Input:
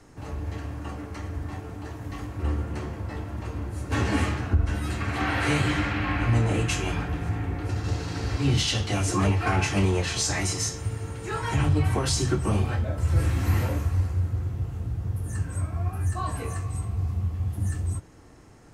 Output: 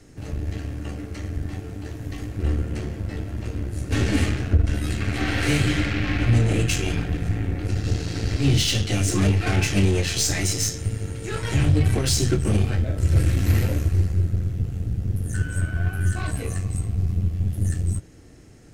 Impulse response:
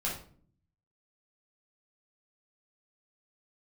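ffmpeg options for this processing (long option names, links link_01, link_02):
-filter_complex "[0:a]asettb=1/sr,asplit=3[link_01][link_02][link_03];[link_01]atrim=end=15.344[link_04];[link_02]atrim=start=15.34:end=16.31,asetpts=PTS-STARTPTS,afade=type=in:duration=0.004:curve=qsin,afade=type=out:start_time=0.966:duration=0.004:curve=qsin,aeval=exprs='val(0)+0.0178*sin(2*PI*1500*n/s)':channel_layout=same[link_05];[link_03]atrim=start=16.306[link_06];[link_04][link_05]acrossfade=duration=0.004:curve1=hsin:curve2=qsin[link_07];[link_07][link_06]acrossfade=duration=0.004:curve1=qsin:curve2=hsin,aeval=exprs='0.266*(cos(1*acos(clip(val(0)/0.266,-1,1)))-cos(1*PI/2))+0.015*(cos(6*acos(clip(val(0)/0.266,-1,1)))-cos(6*PI/2))+0.0299*(cos(8*acos(clip(val(0)/0.266,-1,1)))-cos(8*PI/2))':channel_layout=same,equalizer=frequency=1000:width=1.4:gain=-13,volume=4dB"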